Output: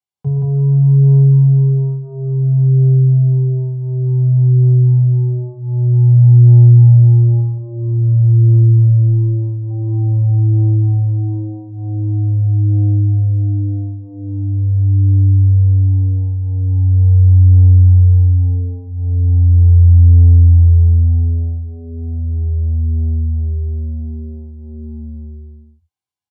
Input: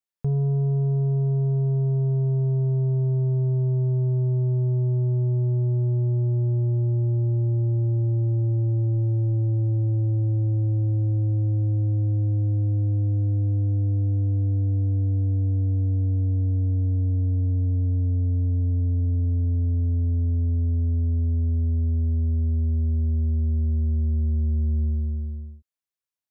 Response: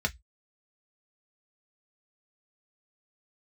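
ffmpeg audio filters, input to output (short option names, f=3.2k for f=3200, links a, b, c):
-filter_complex "[0:a]asetnsamples=n=441:p=0,asendcmd='7.4 equalizer g -3;9.7 equalizer g 12.5',equalizer=f=790:w=3.2:g=10,aecho=1:1:116.6|174.9:0.355|0.891[a];[1:a]atrim=start_sample=2205,asetrate=70560,aresample=44100[b];[a][b]afir=irnorm=-1:irlink=0,volume=-5dB"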